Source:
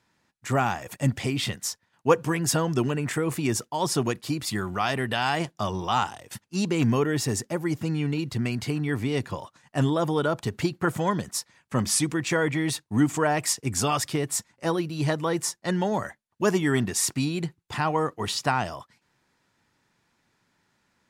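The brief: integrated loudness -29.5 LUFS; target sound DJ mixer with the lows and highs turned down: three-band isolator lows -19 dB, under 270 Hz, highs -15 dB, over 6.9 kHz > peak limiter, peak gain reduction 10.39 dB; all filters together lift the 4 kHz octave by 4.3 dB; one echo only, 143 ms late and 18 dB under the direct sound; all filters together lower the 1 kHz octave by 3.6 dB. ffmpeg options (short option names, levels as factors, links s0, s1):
-filter_complex "[0:a]acrossover=split=270 6900:gain=0.112 1 0.178[s0][s1][s2];[s0][s1][s2]amix=inputs=3:normalize=0,equalizer=f=1000:t=o:g=-5,equalizer=f=4000:t=o:g=7,aecho=1:1:143:0.126,volume=1.12,alimiter=limit=0.133:level=0:latency=1"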